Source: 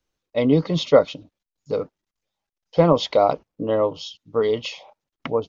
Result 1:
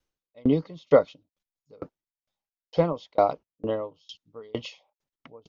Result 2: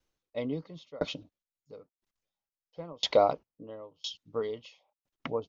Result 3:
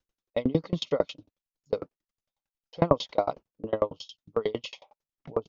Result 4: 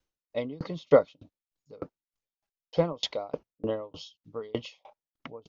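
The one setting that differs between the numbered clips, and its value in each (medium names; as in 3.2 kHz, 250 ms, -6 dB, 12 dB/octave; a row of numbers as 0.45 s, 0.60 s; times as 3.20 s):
sawtooth tremolo in dB, rate: 2.2 Hz, 0.99 Hz, 11 Hz, 3.3 Hz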